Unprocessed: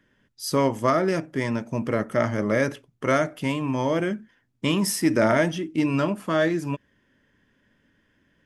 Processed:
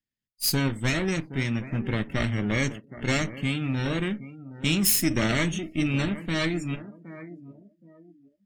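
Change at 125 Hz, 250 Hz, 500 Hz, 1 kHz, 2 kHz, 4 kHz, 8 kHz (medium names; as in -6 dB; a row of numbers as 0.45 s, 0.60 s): +2.0 dB, -2.5 dB, -9.5 dB, -9.5 dB, 0.0 dB, +4.0 dB, +4.5 dB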